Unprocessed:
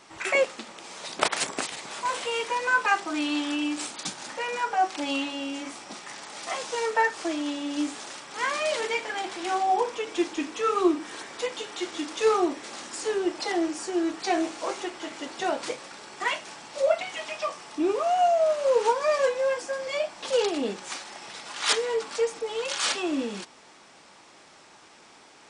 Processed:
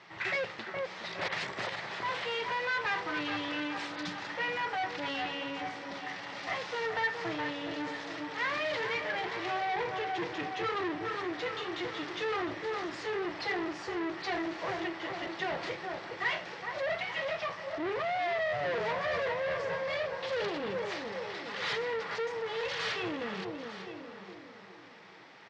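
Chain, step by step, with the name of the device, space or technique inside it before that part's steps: analogue delay pedal into a guitar amplifier (analogue delay 0.416 s, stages 4096, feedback 49%, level -8 dB; tube stage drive 31 dB, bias 0.6; speaker cabinet 100–4600 Hz, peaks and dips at 110 Hz +10 dB, 170 Hz +9 dB, 260 Hz -9 dB, 1900 Hz +8 dB); notches 50/100/150/200 Hz; echo 0.899 s -14 dB

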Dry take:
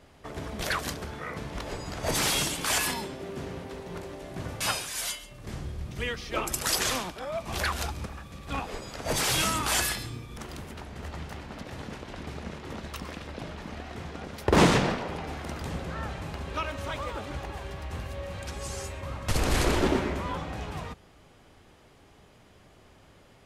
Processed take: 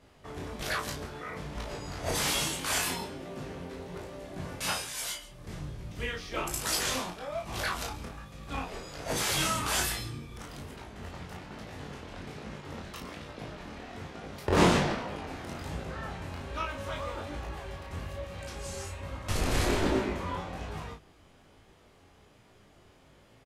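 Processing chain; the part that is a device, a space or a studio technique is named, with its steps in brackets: double-tracked vocal (doubler 34 ms -5 dB; chorus 1.2 Hz, delay 18.5 ms, depth 4.9 ms); gain -1 dB

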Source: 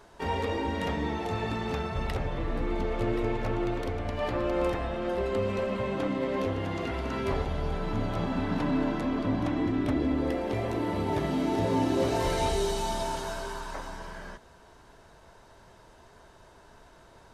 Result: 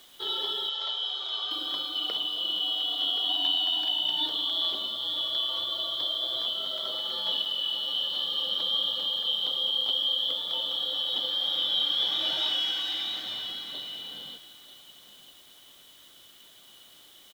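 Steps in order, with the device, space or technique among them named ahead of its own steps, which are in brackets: 3.29–4.26 comb 1.3 ms, depth 97%; split-band scrambled radio (four-band scrambler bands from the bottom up 2413; BPF 300–3200 Hz; white noise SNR 27 dB); 0.69–1.51 elliptic band-pass 590–6900 Hz; echo 0.94 s -14.5 dB; gain +2 dB

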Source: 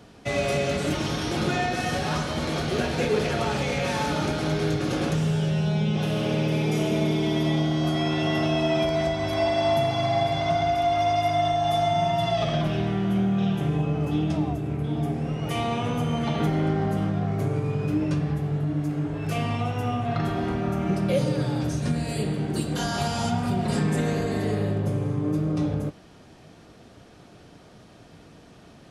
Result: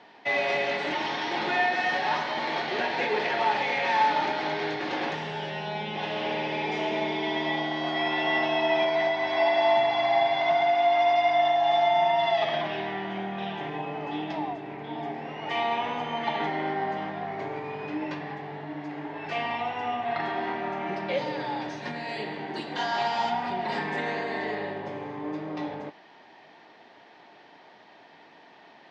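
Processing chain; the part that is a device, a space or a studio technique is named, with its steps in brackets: phone earpiece (speaker cabinet 430–4400 Hz, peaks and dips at 500 Hz -5 dB, 890 Hz +10 dB, 1300 Hz -6 dB, 1900 Hz +9 dB)

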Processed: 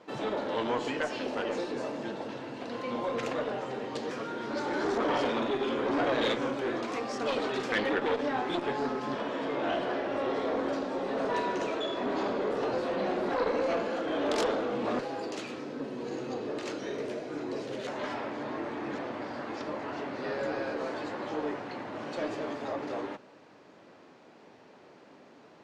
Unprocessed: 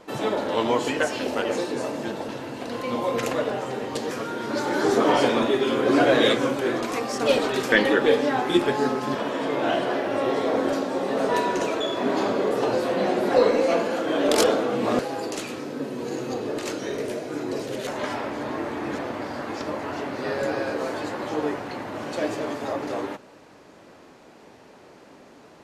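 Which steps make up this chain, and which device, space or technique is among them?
valve radio (BPF 110–5300 Hz; tube stage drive 12 dB, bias 0.25; core saturation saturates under 890 Hz); gain -5 dB

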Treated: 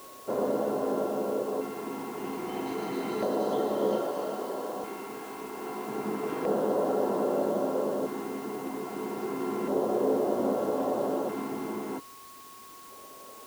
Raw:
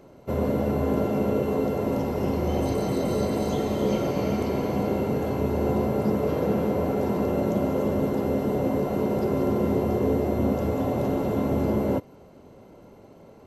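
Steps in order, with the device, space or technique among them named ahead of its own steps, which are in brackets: HPF 290 Hz 6 dB/oct; 4.01–5.88 low shelf 310 Hz -9.5 dB; shortwave radio (BPF 270–2900 Hz; tremolo 0.29 Hz, depth 40%; LFO notch square 0.31 Hz 560–2300 Hz; whine 1100 Hz -50 dBFS; white noise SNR 21 dB); gain +1.5 dB

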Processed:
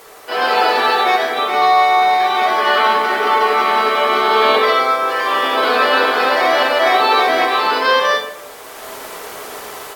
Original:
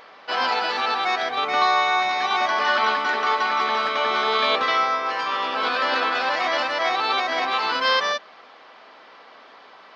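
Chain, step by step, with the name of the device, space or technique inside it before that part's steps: filmed off a television (BPF 170–6600 Hz; bell 410 Hz +10.5 dB 0.54 oct; reverb RT60 0.75 s, pre-delay 7 ms, DRR -2 dB; white noise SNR 28 dB; AGC gain up to 10 dB; gain -1 dB; AAC 64 kbps 48000 Hz)

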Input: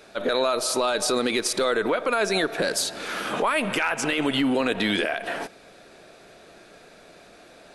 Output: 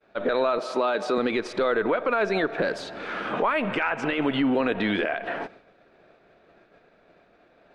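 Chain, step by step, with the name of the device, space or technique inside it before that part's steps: hearing-loss simulation (LPF 2300 Hz 12 dB/oct; expander -43 dBFS); 0.58–1.18 HPF 160 Hz 24 dB/oct

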